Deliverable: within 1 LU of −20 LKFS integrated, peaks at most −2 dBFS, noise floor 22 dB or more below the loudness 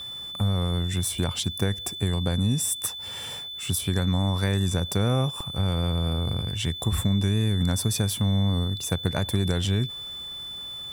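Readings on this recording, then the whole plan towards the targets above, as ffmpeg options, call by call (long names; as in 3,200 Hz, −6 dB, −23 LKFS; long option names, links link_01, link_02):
interfering tone 3,500 Hz; level of the tone −34 dBFS; integrated loudness −26.0 LKFS; sample peak −11.0 dBFS; target loudness −20.0 LKFS
→ -af "bandreject=frequency=3500:width=30"
-af "volume=6dB"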